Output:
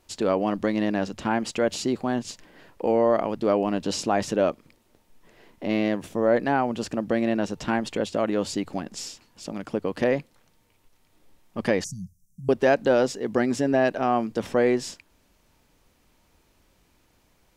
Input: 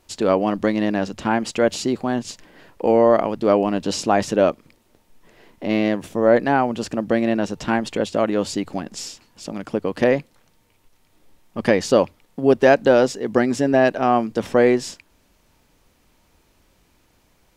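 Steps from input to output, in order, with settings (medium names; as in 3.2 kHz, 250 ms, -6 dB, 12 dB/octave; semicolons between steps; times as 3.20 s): 11.84–12.49 s: Chebyshev band-stop 190–5800 Hz, order 5; in parallel at -2 dB: peak limiter -12 dBFS, peak gain reduction 9.5 dB; on the sum: trim -8.5 dB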